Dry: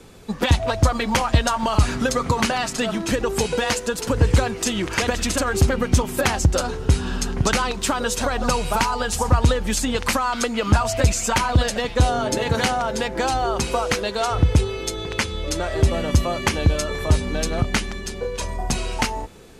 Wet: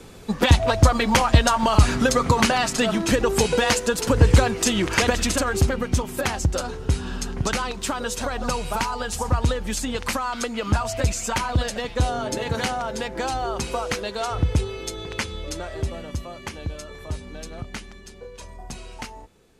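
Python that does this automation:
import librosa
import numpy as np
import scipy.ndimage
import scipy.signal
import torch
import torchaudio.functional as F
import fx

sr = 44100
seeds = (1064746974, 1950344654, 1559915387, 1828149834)

y = fx.gain(x, sr, db=fx.line((5.04, 2.0), (5.91, -4.5), (15.33, -4.5), (16.2, -13.0)))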